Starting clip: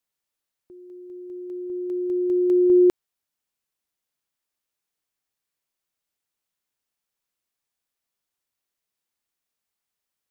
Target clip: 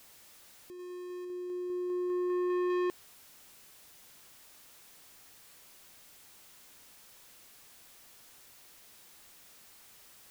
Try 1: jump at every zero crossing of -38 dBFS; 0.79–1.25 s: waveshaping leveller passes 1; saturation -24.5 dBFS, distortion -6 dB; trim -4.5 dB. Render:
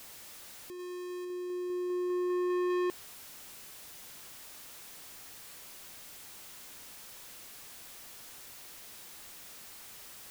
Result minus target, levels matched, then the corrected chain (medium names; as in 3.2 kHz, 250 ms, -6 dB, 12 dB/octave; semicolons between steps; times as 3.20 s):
jump at every zero crossing: distortion +7 dB
jump at every zero crossing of -45.5 dBFS; 0.79–1.25 s: waveshaping leveller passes 1; saturation -24.5 dBFS, distortion -6 dB; trim -4.5 dB